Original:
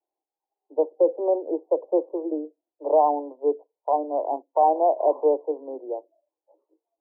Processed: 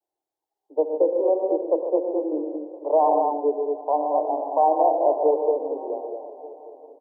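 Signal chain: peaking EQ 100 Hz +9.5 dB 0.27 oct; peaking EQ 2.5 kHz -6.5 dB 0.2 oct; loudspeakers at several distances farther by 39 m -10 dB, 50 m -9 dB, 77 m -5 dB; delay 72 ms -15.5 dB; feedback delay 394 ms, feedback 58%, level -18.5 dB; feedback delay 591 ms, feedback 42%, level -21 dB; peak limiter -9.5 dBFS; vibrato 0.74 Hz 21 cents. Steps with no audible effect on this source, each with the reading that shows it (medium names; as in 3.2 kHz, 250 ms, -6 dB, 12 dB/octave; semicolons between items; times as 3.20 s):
peaking EQ 100 Hz: input has nothing below 250 Hz; peaking EQ 2.5 kHz: input has nothing above 1.1 kHz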